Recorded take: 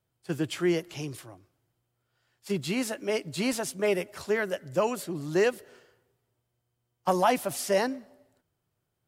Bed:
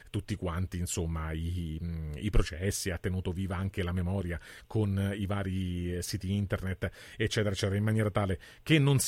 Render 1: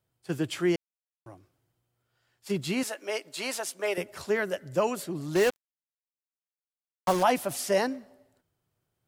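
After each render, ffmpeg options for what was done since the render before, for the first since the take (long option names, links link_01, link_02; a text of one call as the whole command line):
ffmpeg -i in.wav -filter_complex "[0:a]asettb=1/sr,asplit=3[link_01][link_02][link_03];[link_01]atrim=end=2.834[link_04];[link_02]atrim=start=2.83:end=3.98,asetpts=PTS-STARTPTS,afade=type=in:duration=0.004:curve=qsin,afade=type=out:start_time=1.146:duration=0.004:curve=qsin,highpass=530[link_05];[link_03]atrim=start=3.976[link_06];[link_04][link_05]acrossfade=duration=0.004:curve1=hsin:curve2=qsin[link_07];[link_07][link_06]acrossfade=duration=0.004:curve1=qsin:curve2=hsin,asettb=1/sr,asplit=3[link_08][link_09][link_10];[link_08]atrim=end=5.354[link_11];[link_09]atrim=start=5.35:end=7.23,asetpts=PTS-STARTPTS,afade=type=in:duration=0.004:curve=qsin,afade=type=out:start_time=1.876:duration=0.004:curve=qsin,acrusher=bits=4:mix=0:aa=0.5[link_12];[link_10]atrim=start=7.226[link_13];[link_11][link_12]acrossfade=duration=0.004:curve1=hsin:curve2=qsin[link_14];[link_14][link_13]acrossfade=duration=0.004:curve1=qsin:curve2=hsin,asplit=3[link_15][link_16][link_17];[link_15]atrim=end=0.76,asetpts=PTS-STARTPTS,afade=type=out:start_time=0.756:duration=0.004:curve=hsin[link_18];[link_16]atrim=start=0.76:end=1.26,asetpts=PTS-STARTPTS,volume=0[link_19];[link_17]atrim=start=1.26,asetpts=PTS-STARTPTS,afade=type=in:duration=0.004:curve=hsin[link_20];[link_18][link_19][link_20]concat=n=3:v=0:a=1" out.wav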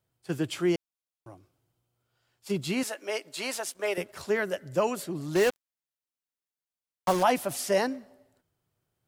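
ffmpeg -i in.wav -filter_complex "[0:a]asettb=1/sr,asplit=3[link_01][link_02][link_03];[link_01]atrim=end=0.514[link_04];[link_02]atrim=start=0.51:end=2.7,asetpts=PTS-STARTPTS,afade=type=in:duration=0.004:curve=qsin,afade=type=out:start_time=2.186:duration=0.004:curve=qsin,equalizer=frequency=1800:width=4.1:gain=-5.5[link_05];[link_03]atrim=start=2.696[link_06];[link_04][link_05]acrossfade=duration=0.004:curve1=hsin:curve2=qsin[link_07];[link_07][link_06]acrossfade=duration=0.004:curve1=qsin:curve2=hsin,asettb=1/sr,asplit=3[link_08][link_09][link_10];[link_08]atrim=end=3.464[link_11];[link_09]atrim=start=3.46:end=4.23,asetpts=PTS-STARTPTS,afade=type=in:duration=0.004:curve=qsin,afade=type=out:start_time=0.766:duration=0.004:curve=qsin,aeval=exprs='sgn(val(0))*max(abs(val(0))-0.00112,0)':channel_layout=same[link_12];[link_10]atrim=start=4.226[link_13];[link_11][link_12]acrossfade=duration=0.004:curve1=hsin:curve2=qsin[link_14];[link_14][link_13]acrossfade=duration=0.004:curve1=qsin:curve2=hsin" out.wav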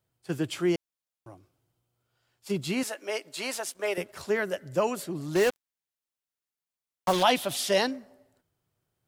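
ffmpeg -i in.wav -filter_complex "[0:a]asettb=1/sr,asplit=3[link_01][link_02][link_03];[link_01]atrim=end=7.134[link_04];[link_02]atrim=start=7.13:end=7.91,asetpts=PTS-STARTPTS,afade=type=in:duration=0.004:curve=qsin,afade=type=out:start_time=0.776:duration=0.004:curve=qsin,equalizer=frequency=3500:width_type=o:width=0.69:gain=14.5[link_05];[link_03]atrim=start=7.906[link_06];[link_04][link_05]acrossfade=duration=0.004:curve1=hsin:curve2=qsin[link_07];[link_07][link_06]acrossfade=duration=0.004:curve1=qsin:curve2=hsin" out.wav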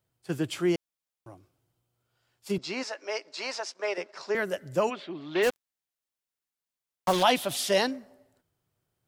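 ffmpeg -i in.wav -filter_complex "[0:a]asettb=1/sr,asplit=3[link_01][link_02][link_03];[link_01]atrim=end=2.584[link_04];[link_02]atrim=start=2.58:end=4.35,asetpts=PTS-STARTPTS,afade=type=in:duration=0.004:curve=qsin,afade=type=out:start_time=1.766:duration=0.004:curve=qsin,highpass=380,equalizer=frequency=970:width_type=q:width=4:gain=3,equalizer=frequency=3200:width_type=q:width=4:gain=-6,equalizer=frequency=5200:width_type=q:width=4:gain=6,lowpass=frequency=6000:width=0.5412,lowpass=frequency=6000:width=1.3066[link_05];[link_03]atrim=start=4.346[link_06];[link_04][link_05]acrossfade=duration=0.004:curve1=hsin:curve2=qsin[link_07];[link_07][link_06]acrossfade=duration=0.004:curve1=qsin:curve2=hsin,asplit=3[link_08][link_09][link_10];[link_08]afade=type=out:start_time=4.89:duration=0.02[link_11];[link_09]highpass=300,equalizer=frequency=490:width_type=q:width=4:gain=-6,equalizer=frequency=2300:width_type=q:width=4:gain=5,equalizer=frequency=3400:width_type=q:width=4:gain=9,lowpass=frequency=3800:width=0.5412,lowpass=frequency=3800:width=1.3066,afade=type=in:start_time=4.89:duration=0.02,afade=type=out:start_time=5.42:duration=0.02[link_12];[link_10]afade=type=in:start_time=5.42:duration=0.02[link_13];[link_11][link_12][link_13]amix=inputs=3:normalize=0" out.wav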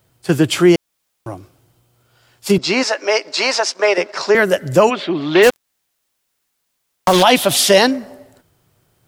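ffmpeg -i in.wav -filter_complex "[0:a]asplit=2[link_01][link_02];[link_02]acompressor=threshold=-34dB:ratio=6,volume=1.5dB[link_03];[link_01][link_03]amix=inputs=2:normalize=0,alimiter=level_in=12.5dB:limit=-1dB:release=50:level=0:latency=1" out.wav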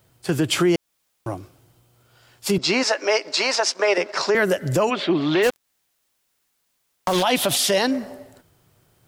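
ffmpeg -i in.wav -af "acompressor=threshold=-13dB:ratio=2.5,alimiter=limit=-10.5dB:level=0:latency=1:release=91" out.wav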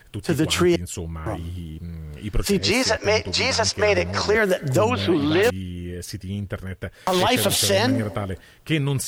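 ffmpeg -i in.wav -i bed.wav -filter_complex "[1:a]volume=2dB[link_01];[0:a][link_01]amix=inputs=2:normalize=0" out.wav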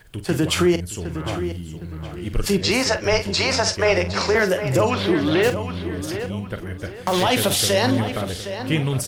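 ffmpeg -i in.wav -filter_complex "[0:a]asplit=2[link_01][link_02];[link_02]adelay=45,volume=-11dB[link_03];[link_01][link_03]amix=inputs=2:normalize=0,asplit=2[link_04][link_05];[link_05]adelay=762,lowpass=frequency=4100:poles=1,volume=-10dB,asplit=2[link_06][link_07];[link_07]adelay=762,lowpass=frequency=4100:poles=1,volume=0.34,asplit=2[link_08][link_09];[link_09]adelay=762,lowpass=frequency=4100:poles=1,volume=0.34,asplit=2[link_10][link_11];[link_11]adelay=762,lowpass=frequency=4100:poles=1,volume=0.34[link_12];[link_06][link_08][link_10][link_12]amix=inputs=4:normalize=0[link_13];[link_04][link_13]amix=inputs=2:normalize=0" out.wav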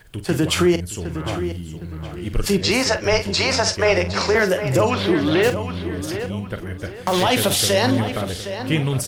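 ffmpeg -i in.wav -af "volume=1dB" out.wav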